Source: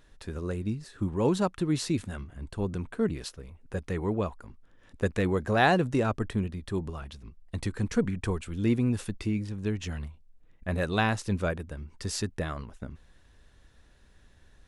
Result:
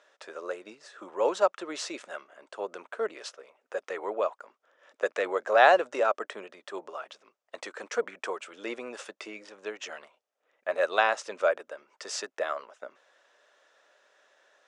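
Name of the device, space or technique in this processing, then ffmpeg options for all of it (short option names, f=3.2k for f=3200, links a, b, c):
phone speaker on a table: -af "highpass=f=470:w=0.5412,highpass=f=470:w=1.3066,equalizer=f=600:t=q:w=4:g=8,equalizer=f=1.3k:t=q:w=4:g=5,equalizer=f=4.2k:t=q:w=4:g=-5,lowpass=f=7.3k:w=0.5412,lowpass=f=7.3k:w=1.3066,volume=2dB"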